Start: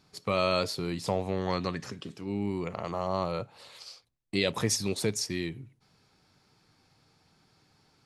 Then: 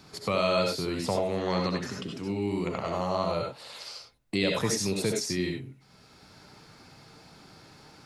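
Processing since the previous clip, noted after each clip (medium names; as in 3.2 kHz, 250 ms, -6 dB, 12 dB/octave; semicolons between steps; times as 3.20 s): on a send at -1 dB: reverberation, pre-delay 58 ms; on the sum: three bands compressed up and down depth 40%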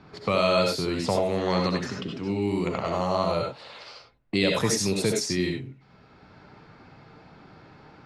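level-controlled noise filter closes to 2 kHz, open at -24 dBFS; trim +3.5 dB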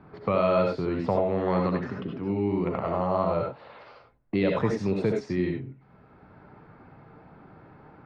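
low-pass 1.6 kHz 12 dB/octave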